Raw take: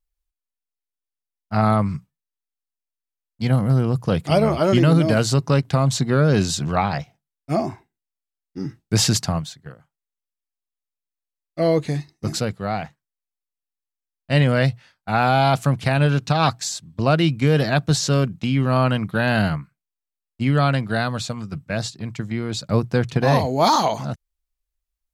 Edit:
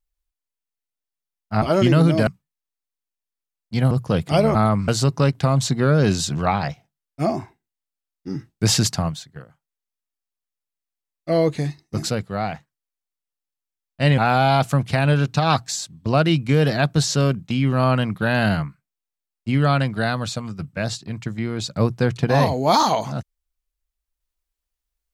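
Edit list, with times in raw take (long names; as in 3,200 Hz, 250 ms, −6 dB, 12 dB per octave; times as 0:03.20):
0:01.62–0:01.95: swap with 0:04.53–0:05.18
0:03.59–0:03.89: remove
0:14.48–0:15.11: remove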